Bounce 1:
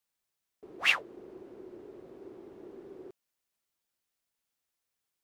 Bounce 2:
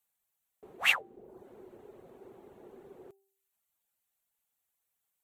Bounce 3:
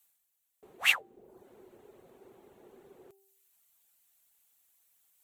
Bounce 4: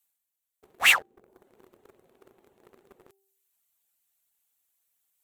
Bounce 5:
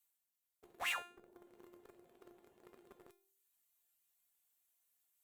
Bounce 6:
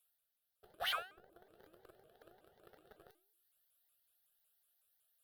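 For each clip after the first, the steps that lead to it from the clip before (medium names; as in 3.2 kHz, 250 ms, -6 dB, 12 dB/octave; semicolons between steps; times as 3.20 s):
graphic EQ with 31 bands 315 Hz -10 dB, 800 Hz +5 dB, 5 kHz -9 dB, 8 kHz +5 dB, 12.5 kHz +11 dB; reverb removal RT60 0.57 s; de-hum 390.6 Hz, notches 2
treble shelf 2.1 kHz +8.5 dB; reverse; upward compressor, threshold -55 dBFS; reverse; trim -4.5 dB
waveshaping leveller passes 3
compression, threshold -26 dBFS, peak gain reduction 10.5 dB; peak limiter -27.5 dBFS, peak gain reduction 9 dB; feedback comb 350 Hz, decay 0.4 s, harmonics all, mix 80%; trim +7 dB
static phaser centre 1.5 kHz, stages 8; vibrato with a chosen wave saw up 5.4 Hz, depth 250 cents; trim +4.5 dB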